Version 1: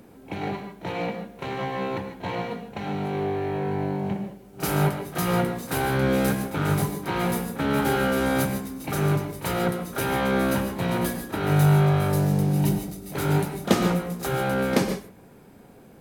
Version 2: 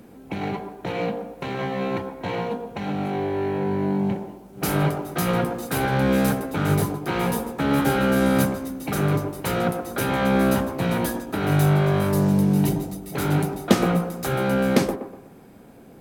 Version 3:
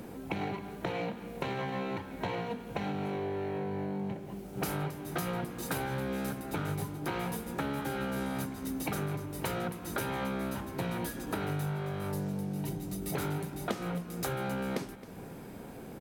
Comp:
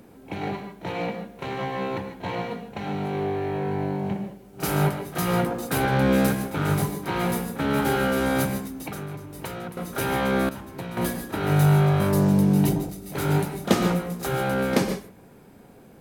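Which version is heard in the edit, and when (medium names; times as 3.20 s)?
1
5.46–6.27 s: from 2
8.68–9.77 s: from 3
10.49–10.97 s: from 3
12.00–12.89 s: from 2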